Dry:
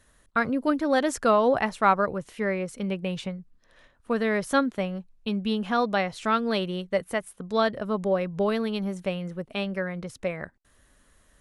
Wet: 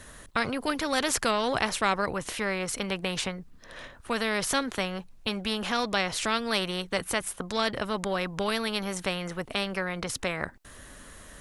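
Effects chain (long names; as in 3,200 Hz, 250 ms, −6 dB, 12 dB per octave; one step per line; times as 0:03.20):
every bin compressed towards the loudest bin 2 to 1
level −2.5 dB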